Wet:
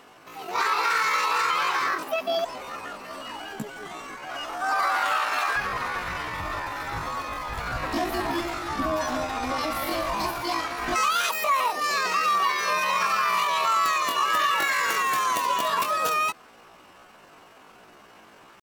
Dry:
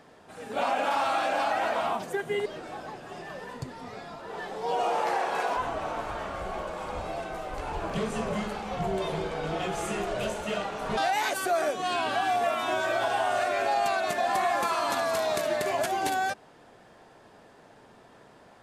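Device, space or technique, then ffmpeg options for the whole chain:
chipmunk voice: -af "asetrate=72056,aresample=44100,atempo=0.612027,volume=3.5dB"

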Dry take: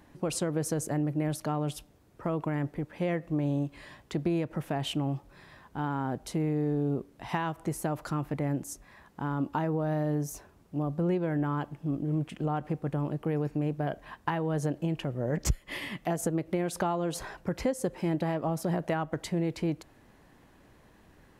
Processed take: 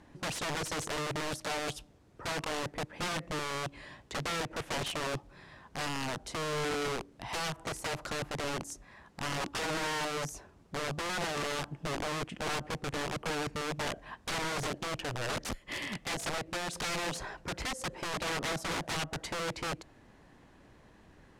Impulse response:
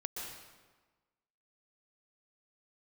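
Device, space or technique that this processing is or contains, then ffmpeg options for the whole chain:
overflowing digital effects unit: -af "aeval=exprs='(mod(28.2*val(0)+1,2)-1)/28.2':c=same,lowpass=8.4k"

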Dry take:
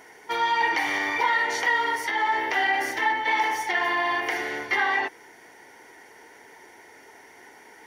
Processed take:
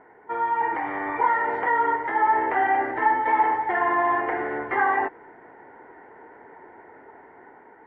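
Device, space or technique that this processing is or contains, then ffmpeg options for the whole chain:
action camera in a waterproof case: -filter_complex "[0:a]asettb=1/sr,asplit=3[a][b][c];[a]atrim=end=1.644[d];[b]atrim=start=1.64:end=2.75,asetpts=PTS-STARTPTS,afade=t=in:d=0.004:c=qsin,afade=t=out:st=1.106:d=0.004:c=qsin,lowpass=f=5.1k:w=0.5412,lowpass=f=5.1k:w=1.3066[e];[c]atrim=start=2.746[f];[d][e]acrossfade=d=0.004:c1=hsin:c2=qsin[g];[g][f]acrossfade=d=0.004:c1=qsin:c2=hsin,lowpass=f=1.5k:w=0.5412,lowpass=f=1.5k:w=1.3066,dynaudnorm=f=460:g=5:m=5dB" -ar 44100 -c:a aac -b:a 48k

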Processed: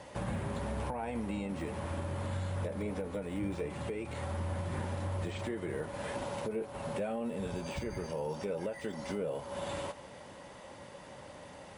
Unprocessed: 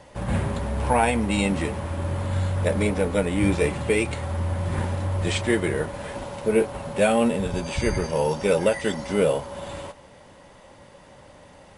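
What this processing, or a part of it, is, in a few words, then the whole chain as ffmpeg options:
podcast mastering chain: -af "highpass=f=98:p=1,deesser=1,acompressor=threshold=-34dB:ratio=2.5,alimiter=level_in=2dB:limit=-24dB:level=0:latency=1:release=465,volume=-2dB" -ar 48000 -c:a libmp3lame -b:a 96k

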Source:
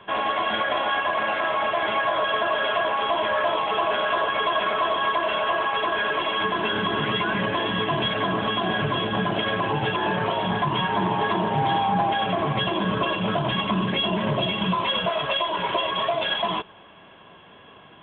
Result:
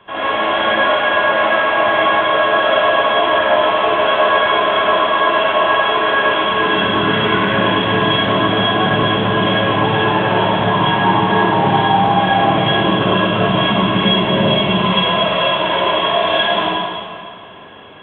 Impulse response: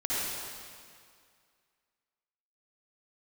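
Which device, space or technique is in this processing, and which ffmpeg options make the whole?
stairwell: -filter_complex "[1:a]atrim=start_sample=2205[a];[0:a][a]afir=irnorm=-1:irlink=0,volume=1dB"

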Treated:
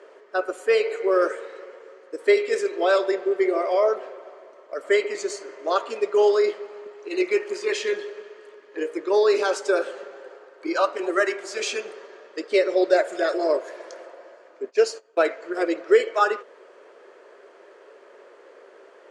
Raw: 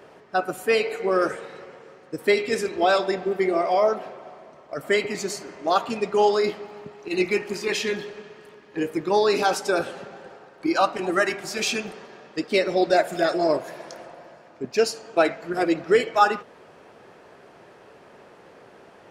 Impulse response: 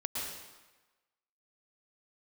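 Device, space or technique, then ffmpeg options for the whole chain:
phone speaker on a table: -filter_complex "[0:a]asplit=3[a][b][c];[a]afade=t=out:st=14.66:d=0.02[d];[b]agate=range=-18dB:threshold=-32dB:ratio=16:detection=peak,afade=t=in:st=14.66:d=0.02,afade=t=out:st=15.25:d=0.02[e];[c]afade=t=in:st=15.25:d=0.02[f];[d][e][f]amix=inputs=3:normalize=0,highpass=f=380:w=0.5412,highpass=f=380:w=1.3066,equalizer=f=390:t=q:w=4:g=5,equalizer=f=550:t=q:w=4:g=4,equalizer=f=780:t=q:w=4:g=-9,equalizer=f=2.6k:t=q:w=4:g=-4,equalizer=f=3.8k:t=q:w=4:g=-4,equalizer=f=5.4k:t=q:w=4:g=-5,lowpass=f=8.2k:w=0.5412,lowpass=f=8.2k:w=1.3066"

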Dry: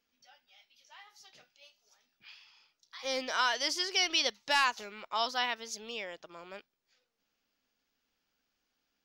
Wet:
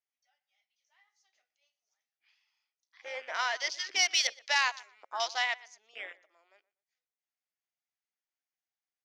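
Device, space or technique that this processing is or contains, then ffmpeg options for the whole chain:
phone speaker on a table: -filter_complex "[0:a]highpass=f=360:w=0.5412,highpass=f=360:w=1.3066,equalizer=f=450:t=q:w=4:g=-6,equalizer=f=710:t=q:w=4:g=6,equalizer=f=2k:t=q:w=4:g=10,equalizer=f=6.4k:t=q:w=4:g=8,lowpass=f=8.9k:w=0.5412,lowpass=f=8.9k:w=1.3066,bandreject=f=60:t=h:w=6,bandreject=f=120:t=h:w=6,bandreject=f=180:t=h:w=6,bandreject=f=240:t=h:w=6,bandreject=f=300:t=h:w=6,bandreject=f=360:t=h:w=6,bandreject=f=420:t=h:w=6,bandreject=f=480:t=h:w=6,bandreject=f=540:t=h:w=6,asettb=1/sr,asplit=3[a][b][c];[a]atrim=end=3.994[d];[b]atrim=start=3.99:end=5.68,asetpts=PTS-STARTPTS,afade=t=in:d=0.004:c=qsin,afade=t=out:st=1.686:d=0.004:c=qsin,aemphasis=mode=production:type=bsi[e];[c]atrim=start=5.676[f];[d][e]acrossfade=d=0.004:c1=hsin:c2=qsin[g];[g][f]acrossfade=d=0.004:c1=qsin:c2=hsin,afwtdn=0.02,asplit=2[h][i];[i]adelay=121,lowpass=f=2.6k:p=1,volume=-20dB,asplit=2[j][k];[k]adelay=121,lowpass=f=2.6k:p=1,volume=0.27[l];[h][j][l]amix=inputs=3:normalize=0,volume=-4dB"

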